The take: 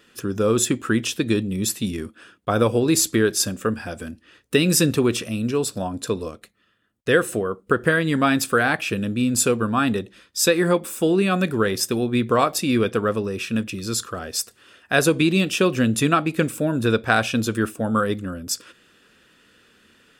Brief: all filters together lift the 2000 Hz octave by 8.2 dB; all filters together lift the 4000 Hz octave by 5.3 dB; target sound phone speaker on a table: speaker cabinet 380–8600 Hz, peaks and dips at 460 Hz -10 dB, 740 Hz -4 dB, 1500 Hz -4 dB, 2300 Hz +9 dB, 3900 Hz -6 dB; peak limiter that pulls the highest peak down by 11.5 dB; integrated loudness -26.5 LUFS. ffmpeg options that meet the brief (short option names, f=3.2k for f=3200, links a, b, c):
-af "equalizer=f=2k:t=o:g=7,equalizer=f=4k:t=o:g=7,alimiter=limit=-9dB:level=0:latency=1,highpass=f=380:w=0.5412,highpass=f=380:w=1.3066,equalizer=f=460:t=q:w=4:g=-10,equalizer=f=740:t=q:w=4:g=-4,equalizer=f=1.5k:t=q:w=4:g=-4,equalizer=f=2.3k:t=q:w=4:g=9,equalizer=f=3.9k:t=q:w=4:g=-6,lowpass=f=8.6k:w=0.5412,lowpass=f=8.6k:w=1.3066,volume=-4.5dB"